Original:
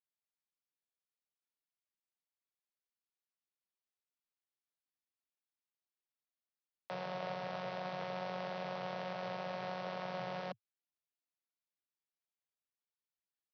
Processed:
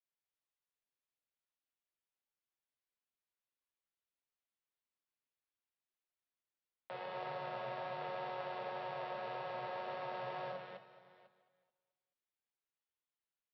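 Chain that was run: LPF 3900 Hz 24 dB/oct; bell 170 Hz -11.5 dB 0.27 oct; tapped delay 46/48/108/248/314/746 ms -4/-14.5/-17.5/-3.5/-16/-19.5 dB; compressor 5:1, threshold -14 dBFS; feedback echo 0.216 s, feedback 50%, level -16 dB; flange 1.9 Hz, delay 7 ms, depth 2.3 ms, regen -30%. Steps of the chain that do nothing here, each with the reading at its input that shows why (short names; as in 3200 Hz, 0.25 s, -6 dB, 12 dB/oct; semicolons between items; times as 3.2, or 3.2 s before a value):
compressor, threshold -14 dBFS: input peak -25.0 dBFS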